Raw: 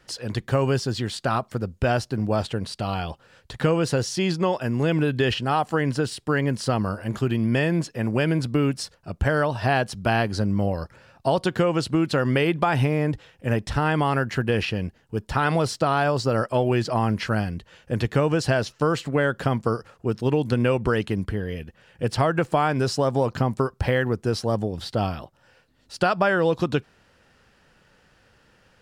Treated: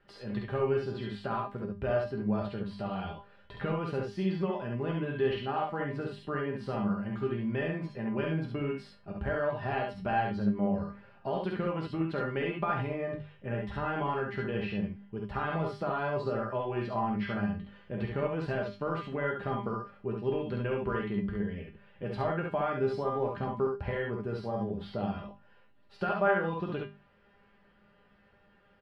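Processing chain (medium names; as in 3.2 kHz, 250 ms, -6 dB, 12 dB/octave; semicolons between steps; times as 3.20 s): treble shelf 8.3 kHz +6 dB; hum notches 50/100/150/200/250 Hz; in parallel at 0 dB: compression, threshold -31 dBFS, peak gain reduction 14 dB; on the sum: distance through air 440 m; feedback comb 200 Hz, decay 0.25 s, harmonics all, mix 90%; on a send: early reflections 49 ms -7 dB, 68 ms -3 dB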